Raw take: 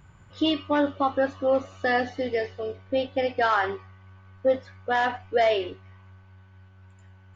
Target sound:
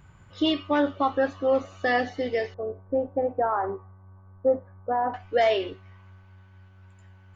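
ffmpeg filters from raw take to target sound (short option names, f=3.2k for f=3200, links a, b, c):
-filter_complex "[0:a]asettb=1/sr,asplit=3[a][b][c];[a]atrim=end=2.544[d];[b]atrim=start=2.54:end=5.14,asetpts=PTS-STARTPTS,afade=t=in:d=0.004:c=qsin,afade=t=out:st=2.596:d=0.004:c=qsin,lowpass=f=1.1k:w=0.5412,lowpass=f=1.1k:w=1.3066[e];[c]atrim=start=5.136[f];[d][e]acrossfade=d=0.004:c1=hsin:c2=qsin[g];[g][f]acrossfade=d=0.004:c1=qsin:c2=hsin"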